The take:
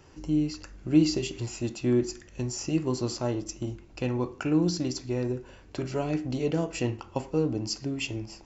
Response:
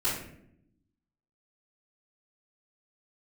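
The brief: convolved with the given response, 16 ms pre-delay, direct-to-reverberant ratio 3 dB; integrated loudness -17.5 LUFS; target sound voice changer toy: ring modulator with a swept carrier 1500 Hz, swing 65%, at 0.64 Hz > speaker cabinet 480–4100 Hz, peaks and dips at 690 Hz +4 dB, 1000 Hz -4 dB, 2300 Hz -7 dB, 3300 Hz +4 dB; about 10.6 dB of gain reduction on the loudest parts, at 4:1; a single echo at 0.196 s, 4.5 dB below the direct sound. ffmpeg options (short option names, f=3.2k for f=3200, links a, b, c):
-filter_complex "[0:a]acompressor=threshold=-28dB:ratio=4,aecho=1:1:196:0.596,asplit=2[a][b];[1:a]atrim=start_sample=2205,adelay=16[c];[b][c]afir=irnorm=-1:irlink=0,volume=-11.5dB[d];[a][d]amix=inputs=2:normalize=0,aeval=exprs='val(0)*sin(2*PI*1500*n/s+1500*0.65/0.64*sin(2*PI*0.64*n/s))':c=same,highpass=480,equalizer=f=690:t=q:w=4:g=4,equalizer=f=1k:t=q:w=4:g=-4,equalizer=f=2.3k:t=q:w=4:g=-7,equalizer=f=3.3k:t=q:w=4:g=4,lowpass=f=4.1k:w=0.5412,lowpass=f=4.1k:w=1.3066,volume=14.5dB"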